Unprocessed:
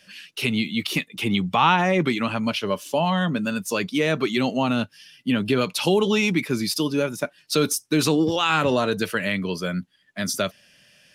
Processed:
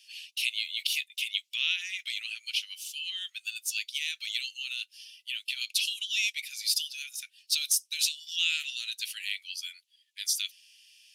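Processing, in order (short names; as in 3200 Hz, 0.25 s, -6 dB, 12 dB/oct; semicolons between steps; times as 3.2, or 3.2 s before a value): steep high-pass 2600 Hz 36 dB/oct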